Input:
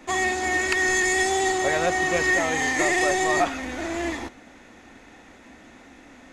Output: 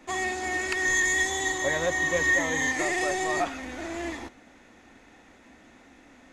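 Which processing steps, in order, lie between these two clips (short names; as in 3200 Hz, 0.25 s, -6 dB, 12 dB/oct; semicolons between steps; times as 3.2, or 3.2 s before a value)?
0.85–2.72 ripple EQ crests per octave 1.1, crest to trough 10 dB; gain -5.5 dB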